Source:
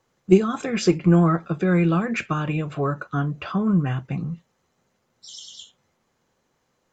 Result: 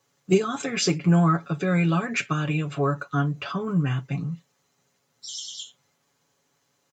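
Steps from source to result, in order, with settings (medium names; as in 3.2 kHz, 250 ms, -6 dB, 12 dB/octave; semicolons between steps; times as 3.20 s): high-pass 64 Hz; treble shelf 2.7 kHz +9.5 dB; comb 7.1 ms; trim -4 dB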